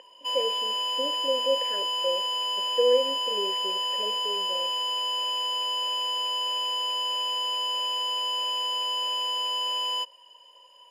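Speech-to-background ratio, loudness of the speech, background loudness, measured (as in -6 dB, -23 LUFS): -4.5 dB, -30.5 LUFS, -26.0 LUFS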